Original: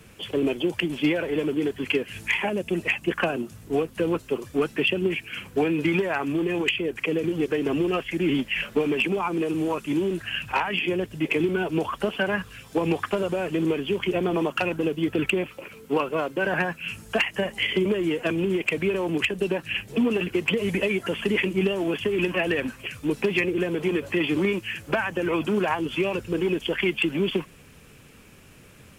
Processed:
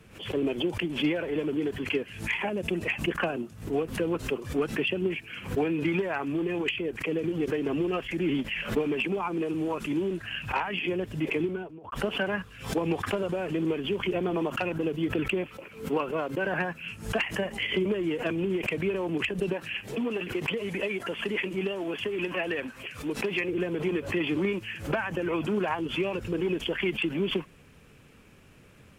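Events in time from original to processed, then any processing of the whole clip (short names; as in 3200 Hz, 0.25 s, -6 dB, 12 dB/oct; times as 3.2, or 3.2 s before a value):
11.3–11.92 studio fade out
19.53–23.49 low shelf 230 Hz -9.5 dB
whole clip: high shelf 4600 Hz -8 dB; backwards sustainer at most 120 dB/s; gain -4 dB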